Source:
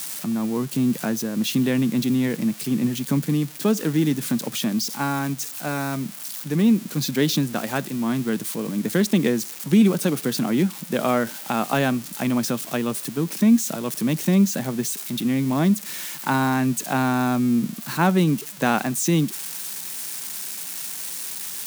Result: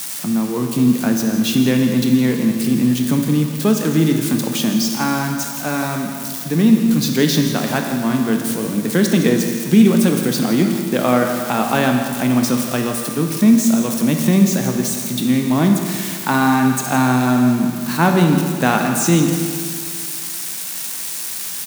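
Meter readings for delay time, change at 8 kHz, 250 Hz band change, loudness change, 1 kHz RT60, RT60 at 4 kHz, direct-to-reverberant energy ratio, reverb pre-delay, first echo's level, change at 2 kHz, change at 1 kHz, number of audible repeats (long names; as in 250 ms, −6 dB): 164 ms, +5.5 dB, +6.0 dB, +6.0 dB, 2.1 s, 2.0 s, 3.0 dB, 18 ms, −13.0 dB, +6.0 dB, +6.0 dB, 1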